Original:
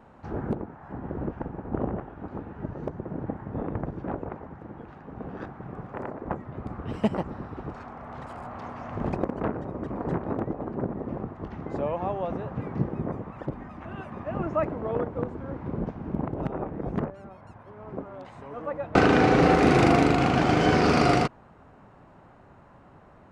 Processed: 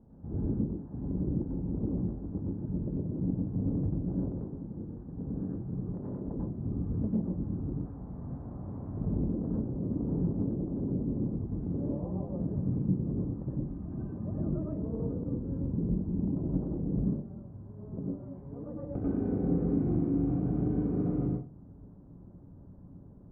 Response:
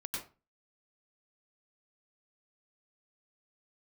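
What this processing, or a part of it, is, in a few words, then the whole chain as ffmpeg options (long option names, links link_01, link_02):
television next door: -filter_complex "[0:a]acompressor=threshold=-29dB:ratio=4,lowpass=260[link_01];[1:a]atrim=start_sample=2205[link_02];[link_01][link_02]afir=irnorm=-1:irlink=0,volume=4dB"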